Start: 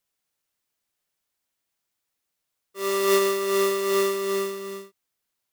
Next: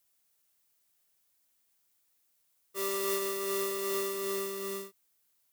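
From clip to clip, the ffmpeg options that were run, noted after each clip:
ffmpeg -i in.wav -af "highshelf=frequency=7100:gain=10.5,acompressor=threshold=-33dB:ratio=3" out.wav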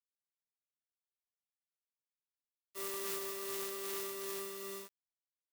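ffmpeg -i in.wav -af "aeval=exprs='(mod(15.8*val(0)+1,2)-1)/15.8':channel_layout=same,acrusher=bits=6:mix=0:aa=0.000001,lowshelf=frequency=280:gain=-4.5,volume=-7dB" out.wav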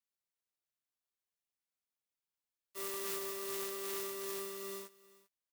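ffmpeg -i in.wav -af "aecho=1:1:393:0.1" out.wav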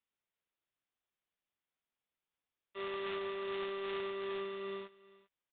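ffmpeg -i in.wav -af "aresample=8000,aresample=44100,volume=4dB" out.wav

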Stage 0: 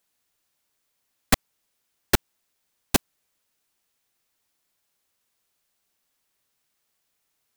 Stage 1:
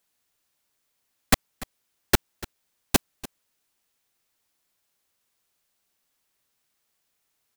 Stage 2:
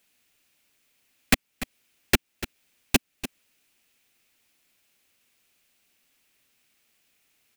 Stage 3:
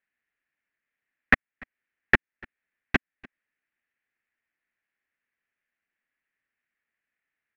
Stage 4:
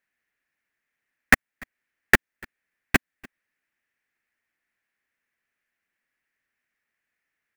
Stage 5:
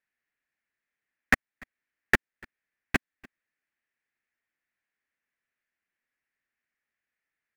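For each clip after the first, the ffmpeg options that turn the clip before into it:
ffmpeg -i in.wav -af "aecho=1:1:292:0.119" out.wav
ffmpeg -i in.wav -af "equalizer=frequency=250:width_type=o:width=0.67:gain=5,equalizer=frequency=1000:width_type=o:width=0.67:gain=-4,equalizer=frequency=2500:width_type=o:width=0.67:gain=8,acompressor=threshold=-36dB:ratio=1.5,volume=5.5dB" out.wav
ffmpeg -i in.wav -af "aeval=exprs='0.631*(cos(1*acos(clip(val(0)/0.631,-1,1)))-cos(1*PI/2))+0.1*(cos(3*acos(clip(val(0)/0.631,-1,1)))-cos(3*PI/2))+0.0355*(cos(7*acos(clip(val(0)/0.631,-1,1)))-cos(7*PI/2))':channel_layout=same,lowpass=frequency=1800:width_type=q:width=5.2" out.wav
ffmpeg -i in.wav -af "acrusher=bits=2:mode=log:mix=0:aa=0.000001,volume=2.5dB" out.wav
ffmpeg -i in.wav -af "highshelf=frequency=9100:gain=-10.5,volume=-5.5dB" out.wav

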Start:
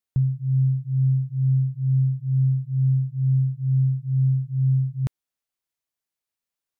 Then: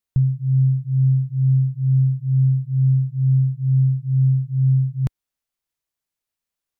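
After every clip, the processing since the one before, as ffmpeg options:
ffmpeg -i in.wav -af "lowshelf=frequency=74:gain=8.5,volume=1.5dB" out.wav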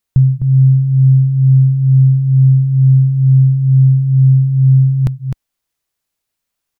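ffmpeg -i in.wav -af "aecho=1:1:256:0.447,volume=8dB" out.wav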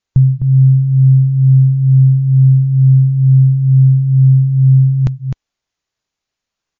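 ffmpeg -i in.wav -af "volume=1dB" -ar 16000 -c:a libmp3lame -b:a 32k out.mp3

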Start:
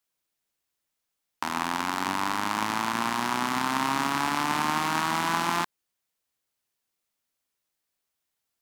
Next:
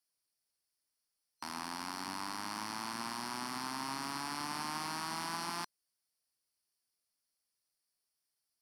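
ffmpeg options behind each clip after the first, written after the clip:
ffmpeg -i in.wav -af "superequalizer=14b=3.16:16b=2.82,alimiter=limit=-16dB:level=0:latency=1:release=10,volume=-8.5dB" out.wav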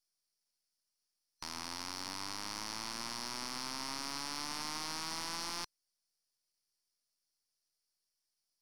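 ffmpeg -i in.wav -af "aeval=exprs='if(lt(val(0),0),0.251*val(0),val(0))':channel_layout=same,equalizer=frequency=5600:width_type=o:width=1.1:gain=8.5,volume=-1.5dB" out.wav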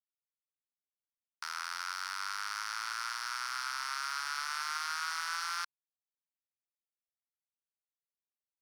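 ffmpeg -i in.wav -af "highpass=frequency=1400:width_type=q:width=6.8,aeval=exprs='sgn(val(0))*max(abs(val(0))-0.00158,0)':channel_layout=same" out.wav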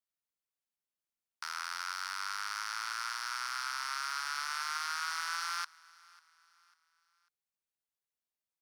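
ffmpeg -i in.wav -af "aecho=1:1:546|1092|1638:0.0631|0.0259|0.0106" out.wav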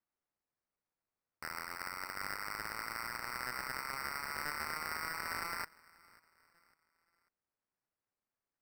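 ffmpeg -i in.wav -af "acrusher=samples=13:mix=1:aa=0.000001,volume=-3.5dB" out.wav

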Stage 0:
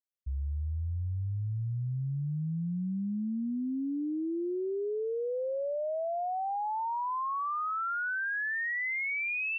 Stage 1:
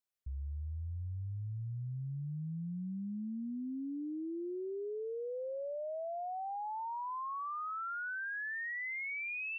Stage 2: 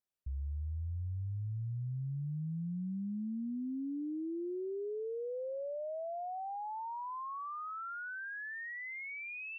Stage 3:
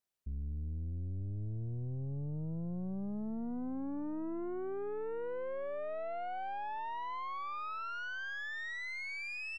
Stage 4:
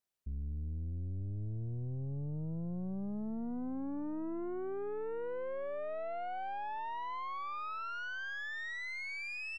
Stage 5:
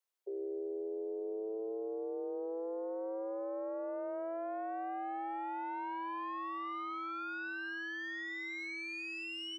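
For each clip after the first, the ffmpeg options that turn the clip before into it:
ffmpeg -i in.wav -af "alimiter=level_in=13.5dB:limit=-24dB:level=0:latency=1:release=75,volume=-13.5dB,volume=1dB" out.wav
ffmpeg -i in.wav -af "tiltshelf=frequency=970:gain=3.5,volume=-1.5dB" out.wav
ffmpeg -i in.wav -filter_complex "[0:a]aeval=exprs='(tanh(112*val(0)+0.5)-tanh(0.5))/112':channel_layout=same,asplit=2[link_01][link_02];[link_02]adelay=915,lowpass=frequency=1100:poles=1,volume=-20dB,asplit=2[link_03][link_04];[link_04]adelay=915,lowpass=frequency=1100:poles=1,volume=0.52,asplit=2[link_05][link_06];[link_06]adelay=915,lowpass=frequency=1100:poles=1,volume=0.52,asplit=2[link_07][link_08];[link_08]adelay=915,lowpass=frequency=1100:poles=1,volume=0.52[link_09];[link_01][link_03][link_05][link_07][link_09]amix=inputs=5:normalize=0,volume=4.5dB" out.wav
ffmpeg -i in.wav -af anull out.wav
ffmpeg -i in.wav -af "afreqshift=330,volume=-1dB" out.wav

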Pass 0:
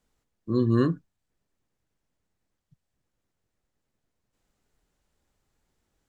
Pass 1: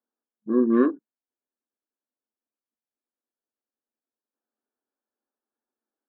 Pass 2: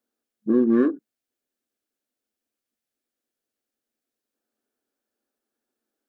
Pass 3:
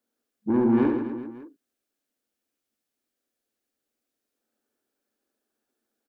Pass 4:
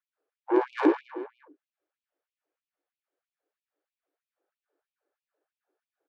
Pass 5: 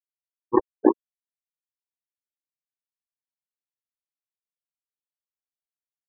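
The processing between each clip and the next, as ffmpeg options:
ffmpeg -i in.wav -af "afftfilt=real='re*between(b*sr/4096,210,1800)':imag='im*between(b*sr/4096,210,1800)':win_size=4096:overlap=0.75,aemphasis=mode=reproduction:type=cd,afwtdn=0.00708,volume=4dB" out.wav
ffmpeg -i in.wav -filter_complex "[0:a]asplit=2[link_01][link_02];[link_02]asoftclip=type=hard:threshold=-19.5dB,volume=-11dB[link_03];[link_01][link_03]amix=inputs=2:normalize=0,equalizer=frequency=970:width_type=o:width=0.56:gain=-8.5,acompressor=threshold=-24dB:ratio=2.5,volume=6dB" out.wav
ffmpeg -i in.wav -af "asoftclip=type=tanh:threshold=-17.5dB,aecho=1:1:70|157.5|266.9|403.6|574.5:0.631|0.398|0.251|0.158|0.1" out.wav
ffmpeg -i in.wav -af "adynamicsmooth=sensitivity=4:basefreq=1500,afftfilt=real='re*gte(b*sr/1024,260*pow(2400/260,0.5+0.5*sin(2*PI*3.1*pts/sr)))':imag='im*gte(b*sr/1024,260*pow(2400/260,0.5+0.5*sin(2*PI*3.1*pts/sr)))':win_size=1024:overlap=0.75,volume=6dB" out.wav
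ffmpeg -i in.wav -af "bandreject=frequency=159:width_type=h:width=4,bandreject=frequency=318:width_type=h:width=4,acrusher=bits=2:mix=0:aa=0.5,afftfilt=real='re*gte(hypot(re,im),0.158)':imag='im*gte(hypot(re,im),0.158)':win_size=1024:overlap=0.75,volume=4.5dB" out.wav

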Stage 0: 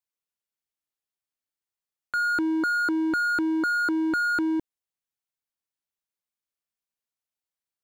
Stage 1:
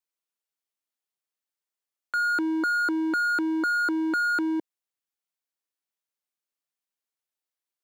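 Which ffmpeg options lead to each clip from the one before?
ffmpeg -i in.wav -af "highpass=250" out.wav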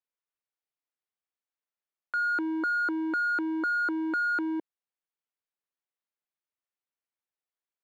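ffmpeg -i in.wav -af "bass=frequency=250:gain=-6,treble=frequency=4000:gain=-14,volume=-2.5dB" out.wav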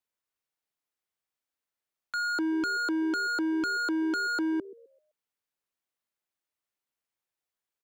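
ffmpeg -i in.wav -filter_complex "[0:a]acrossover=split=260[link_01][link_02];[link_01]asplit=5[link_03][link_04][link_05][link_06][link_07];[link_04]adelay=128,afreqshift=73,volume=-8dB[link_08];[link_05]adelay=256,afreqshift=146,volume=-17.9dB[link_09];[link_06]adelay=384,afreqshift=219,volume=-27.8dB[link_10];[link_07]adelay=512,afreqshift=292,volume=-37.7dB[link_11];[link_03][link_08][link_09][link_10][link_11]amix=inputs=5:normalize=0[link_12];[link_02]asoftclip=type=hard:threshold=-32.5dB[link_13];[link_12][link_13]amix=inputs=2:normalize=0,volume=3.5dB" out.wav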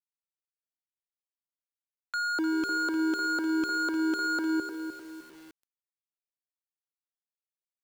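ffmpeg -i in.wav -filter_complex "[0:a]asplit=2[link_01][link_02];[link_02]aecho=0:1:303|606|909|1212:0.376|0.15|0.0601|0.0241[link_03];[link_01][link_03]amix=inputs=2:normalize=0,acrusher=bits=8:mix=0:aa=0.000001" out.wav

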